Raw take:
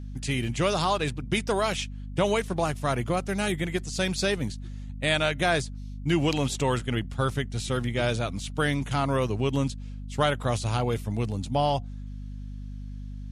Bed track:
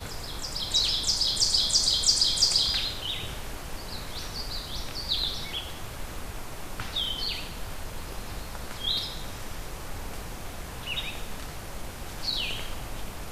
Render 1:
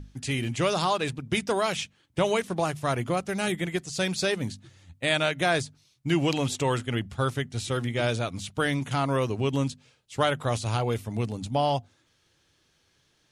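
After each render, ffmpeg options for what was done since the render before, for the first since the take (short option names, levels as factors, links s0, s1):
-af "bandreject=f=50:t=h:w=6,bandreject=f=100:t=h:w=6,bandreject=f=150:t=h:w=6,bandreject=f=200:t=h:w=6,bandreject=f=250:t=h:w=6"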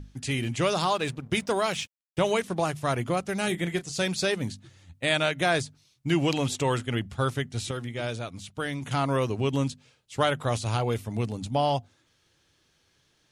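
-filter_complex "[0:a]asettb=1/sr,asplit=3[s0][s1][s2];[s0]atrim=end=0.764[s3];[s1]atrim=start=0.76:end=2.34,asetpts=PTS-STARTPTS,afade=t=in:d=0.004:c=qsin,afade=t=out:st=1.576:d=0.004:c=qsin,aeval=exprs='sgn(val(0))*max(abs(val(0))-0.00211,0)':c=same[s4];[s2]atrim=start=2.336[s5];[s3][s4]acrossfade=d=0.004:c1=hsin:c2=qsin[s6];[s6][s5]acrossfade=d=0.004:c1=qsin:c2=hsin,asettb=1/sr,asplit=3[s7][s8][s9];[s7]atrim=end=3.484[s10];[s8]atrim=start=3.48:end=4.07,asetpts=PTS-STARTPTS,afade=t=in:d=0.004:c=qsin,afade=t=out:st=0.586:d=0.004:c=qsin,asplit=2[s11][s12];[s12]adelay=29,volume=0.251[s13];[s11][s13]amix=inputs=2:normalize=0,atrim=end_sample=26019[s14];[s9]atrim=start=4.066[s15];[s10][s14]acrossfade=d=0.004:c1=hsin:c2=qsin[s16];[s16][s15]acrossfade=d=0.004:c1=qsin:c2=hsin,asplit=3[s17][s18][s19];[s17]atrim=end=7.712[s20];[s18]atrim=start=7.708:end=8.832,asetpts=PTS-STARTPTS,volume=0.531[s21];[s19]atrim=start=8.828[s22];[s20][s21]acrossfade=d=0.004:c1=hsin:c2=hsin[s23];[s23][s22]acrossfade=d=0.004:c1=hsin:c2=hsin"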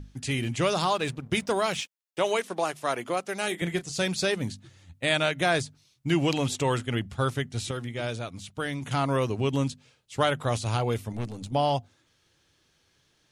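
-filter_complex "[0:a]asettb=1/sr,asplit=3[s0][s1][s2];[s0]atrim=end=1.804[s3];[s1]atrim=start=1.8:end=3.62,asetpts=PTS-STARTPTS,afade=t=in:d=0.004:c=qsin,afade=t=out:st=1.816:d=0.004:c=qsin,highpass=330[s4];[s2]atrim=start=3.616[s5];[s3][s4]acrossfade=d=0.004:c1=hsin:c2=qsin[s6];[s6][s5]acrossfade=d=0.004:c1=qsin:c2=hsin,asettb=1/sr,asplit=3[s7][s8][s9];[s7]atrim=end=11.124[s10];[s8]atrim=start=11.12:end=11.53,asetpts=PTS-STARTPTS,afade=t=in:d=0.004:c=qsin,afade=t=out:st=0.406:d=0.004:c=qsin,aeval=exprs='(tanh(17.8*val(0)+0.65)-tanh(0.65))/17.8':c=same[s11];[s9]atrim=start=11.526[s12];[s10][s11]acrossfade=d=0.004:c1=hsin:c2=qsin[s13];[s13][s12]acrossfade=d=0.004:c1=qsin:c2=hsin"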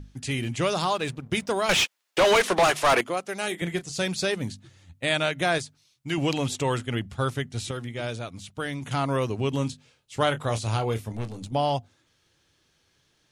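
-filter_complex "[0:a]asettb=1/sr,asplit=3[s0][s1][s2];[s0]atrim=end=1.694[s3];[s1]atrim=start=1.69:end=3.01,asetpts=PTS-STARTPTS,afade=t=in:d=0.004:c=qsin,afade=t=out:st=1.316:d=0.004:c=qsin,asplit=2[s4][s5];[s5]highpass=f=720:p=1,volume=22.4,asoftclip=type=tanh:threshold=0.282[s6];[s4][s6]amix=inputs=2:normalize=0,lowpass=f=4000:p=1,volume=0.501[s7];[s2]atrim=start=3.006[s8];[s3][s7]acrossfade=d=0.004:c1=hsin:c2=qsin[s9];[s9][s8]acrossfade=d=0.004:c1=qsin:c2=hsin,asettb=1/sr,asplit=3[s10][s11][s12];[s10]atrim=end=5.584[s13];[s11]atrim=start=5.58:end=6.18,asetpts=PTS-STARTPTS,afade=t=in:d=0.004:c=qsin,afade=t=out:st=0.596:d=0.004:c=qsin,lowshelf=f=490:g=-7[s14];[s12]atrim=start=6.176[s15];[s13][s14]acrossfade=d=0.004:c1=hsin:c2=qsin[s16];[s16][s15]acrossfade=d=0.004:c1=qsin:c2=hsin,asettb=1/sr,asplit=3[s17][s18][s19];[s17]atrim=end=9.494[s20];[s18]atrim=start=9.49:end=11.45,asetpts=PTS-STARTPTS,afade=t=in:d=0.004:c=qsin,afade=t=out:st=1.956:d=0.004:c=qsin,asplit=2[s21][s22];[s22]adelay=27,volume=0.282[s23];[s21][s23]amix=inputs=2:normalize=0,atrim=end_sample=86436[s24];[s19]atrim=start=11.446[s25];[s20][s24]acrossfade=d=0.004:c1=hsin:c2=qsin[s26];[s26][s25]acrossfade=d=0.004:c1=qsin:c2=hsin"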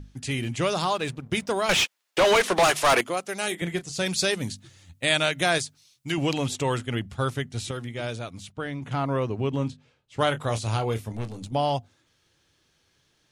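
-filter_complex "[0:a]asettb=1/sr,asplit=3[s0][s1][s2];[s0]atrim=end=2.554[s3];[s1]atrim=start=2.55:end=3.55,asetpts=PTS-STARTPTS,afade=t=in:d=0.004:c=qsin,afade=t=out:st=0.996:d=0.004:c=qsin,highshelf=f=4000:g=5[s4];[s2]atrim=start=3.546[s5];[s3][s4]acrossfade=d=0.004:c1=hsin:c2=qsin[s6];[s6][s5]acrossfade=d=0.004:c1=qsin:c2=hsin,asettb=1/sr,asplit=3[s7][s8][s9];[s7]atrim=end=4.064[s10];[s8]atrim=start=4.06:end=6.12,asetpts=PTS-STARTPTS,afade=t=in:d=0.004:c=qsin,afade=t=out:st=2.056:d=0.004:c=qsin,highshelf=f=3100:g=7.5[s11];[s9]atrim=start=6.116[s12];[s10][s11]acrossfade=d=0.004:c1=hsin:c2=qsin[s13];[s13][s12]acrossfade=d=0.004:c1=qsin:c2=hsin,asettb=1/sr,asplit=3[s14][s15][s16];[s14]atrim=end=8.524[s17];[s15]atrim=start=8.52:end=10.19,asetpts=PTS-STARTPTS,afade=t=in:d=0.004:c=qsin,afade=t=out:st=1.666:d=0.004:c=qsin,lowpass=f=1900:p=1[s18];[s16]atrim=start=10.186[s19];[s17][s18]acrossfade=d=0.004:c1=hsin:c2=qsin[s20];[s20][s19]acrossfade=d=0.004:c1=qsin:c2=hsin"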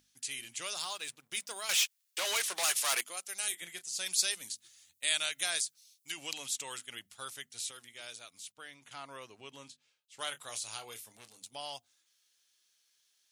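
-af "aderivative"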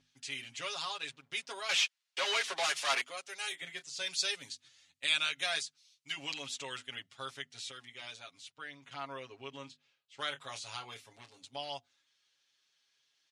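-af "lowpass=4100,aecho=1:1:7.3:0.92"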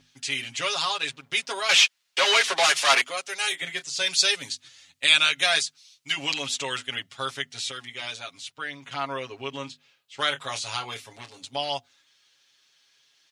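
-af "volume=3.98"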